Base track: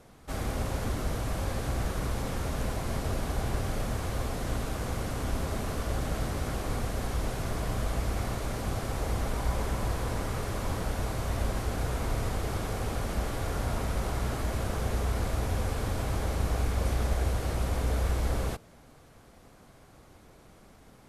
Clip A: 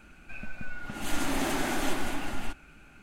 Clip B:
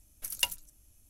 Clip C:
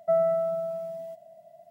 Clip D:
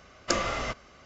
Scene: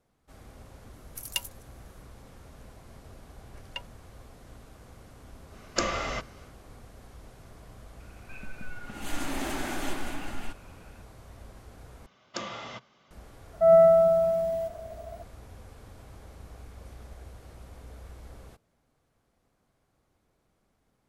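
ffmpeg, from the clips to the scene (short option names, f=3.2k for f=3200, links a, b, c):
-filter_complex "[2:a]asplit=2[a][b];[4:a]asplit=2[c][d];[0:a]volume=-18dB[e];[b]lowpass=2.1k[f];[d]highpass=130,equalizer=f=130:t=q:w=4:g=8,equalizer=f=200:t=q:w=4:g=6,equalizer=f=910:t=q:w=4:g=7,equalizer=f=3.4k:t=q:w=4:g=9,lowpass=f=7.1k:w=0.5412,lowpass=f=7.1k:w=1.3066[g];[3:a]dynaudnorm=f=100:g=3:m=10dB[h];[e]asplit=2[i][j];[i]atrim=end=12.064[k];[g]atrim=end=1.05,asetpts=PTS-STARTPTS,volume=-10.5dB[l];[j]atrim=start=13.106[m];[a]atrim=end=1.09,asetpts=PTS-STARTPTS,volume=-2.5dB,afade=t=in:d=0.004:c=hsin,afade=t=out:st=1.086:d=0.004:c=hsin,adelay=930[n];[f]atrim=end=1.09,asetpts=PTS-STARTPTS,volume=-3dB,afade=t=in:d=0.004:c=hsin,afade=t=out:st=1.086:d=0.004:c=hsin,adelay=146853S[o];[c]atrim=end=1.05,asetpts=PTS-STARTPTS,volume=-1dB,afade=t=in:d=0.1,afade=t=out:st=0.95:d=0.1,adelay=5480[p];[1:a]atrim=end=3.02,asetpts=PTS-STARTPTS,volume=-3.5dB,afade=t=in:d=0.004:c=hsin,afade=t=out:st=3.016:d=0.004:c=hsin,adelay=8000[q];[h]atrim=end=1.7,asetpts=PTS-STARTPTS,volume=-1.5dB,afade=t=in:d=0.004:c=hsin,afade=t=out:st=1.696:d=0.004:c=hsin,adelay=13530[r];[k][l]acrossfade=d=0.004:c1=hsin:c2=hsin[s];[s][m]acrossfade=d=0.004:c1=hsin:c2=hsin[t];[t][n][o][p][q][r]amix=inputs=6:normalize=0"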